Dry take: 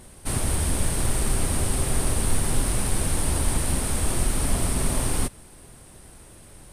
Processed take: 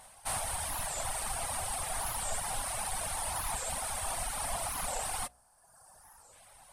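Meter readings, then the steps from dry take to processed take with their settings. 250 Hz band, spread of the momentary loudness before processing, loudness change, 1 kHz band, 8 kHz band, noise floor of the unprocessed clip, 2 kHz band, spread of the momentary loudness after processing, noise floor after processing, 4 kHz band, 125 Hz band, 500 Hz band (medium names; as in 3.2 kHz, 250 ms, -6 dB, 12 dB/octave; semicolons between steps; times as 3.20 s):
-23.0 dB, 1 LU, -9.0 dB, -1.5 dB, -7.0 dB, -48 dBFS, -6.0 dB, 1 LU, -63 dBFS, -6.5 dB, -20.5 dB, -10.0 dB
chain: time-frequency box 5.31–6.33 s, 1.8–4.3 kHz -10 dB; resonant low shelf 520 Hz -12.5 dB, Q 3; de-hum 60.24 Hz, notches 12; reverb removal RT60 1.2 s; warped record 45 rpm, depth 250 cents; trim -4 dB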